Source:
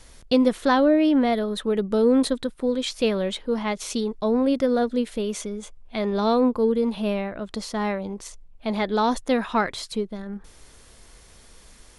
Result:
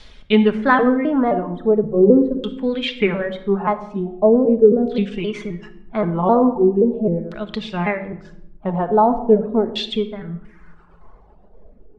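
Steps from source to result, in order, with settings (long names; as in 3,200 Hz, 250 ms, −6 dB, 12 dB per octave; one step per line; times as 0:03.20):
pitch shifter gated in a rhythm −3 semitones, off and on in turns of 262 ms
auto-filter low-pass saw down 0.41 Hz 360–3,900 Hz
reverb reduction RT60 1.1 s
rectangular room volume 2,400 cubic metres, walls furnished, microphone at 1.4 metres
level +3 dB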